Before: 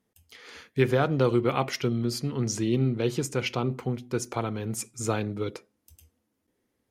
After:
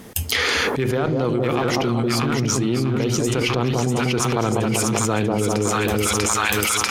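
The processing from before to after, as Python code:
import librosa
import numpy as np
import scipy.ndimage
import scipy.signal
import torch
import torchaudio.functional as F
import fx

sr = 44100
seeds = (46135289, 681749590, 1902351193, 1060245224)

y = fx.cheby_harmonics(x, sr, harmonics=(6, 7), levels_db=(-32, -31), full_scale_db=-9.5)
y = fx.echo_split(y, sr, split_hz=1000.0, low_ms=193, high_ms=642, feedback_pct=52, wet_db=-4)
y = fx.env_flatten(y, sr, amount_pct=100)
y = y * 10.0 ** (-2.5 / 20.0)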